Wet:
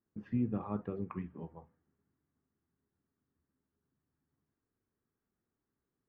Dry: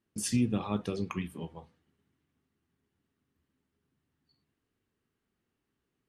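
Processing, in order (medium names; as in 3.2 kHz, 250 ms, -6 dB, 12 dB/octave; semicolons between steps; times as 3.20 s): low-pass 1.7 kHz 24 dB/octave; trim -5 dB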